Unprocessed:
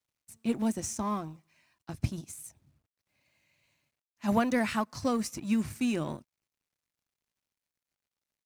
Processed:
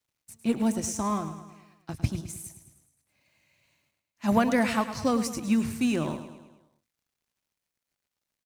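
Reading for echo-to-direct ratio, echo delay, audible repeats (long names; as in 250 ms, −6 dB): −10.0 dB, 106 ms, 5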